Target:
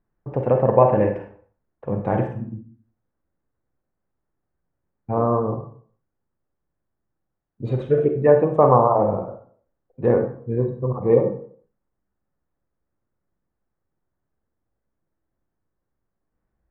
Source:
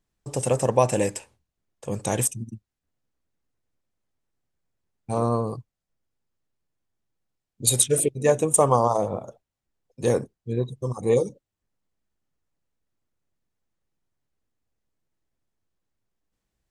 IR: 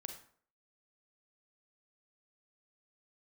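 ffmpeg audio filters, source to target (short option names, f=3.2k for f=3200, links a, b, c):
-filter_complex "[0:a]lowpass=f=1.7k:w=0.5412,lowpass=f=1.7k:w=1.3066[a];[1:a]atrim=start_sample=2205[b];[a][b]afir=irnorm=-1:irlink=0,volume=8dB"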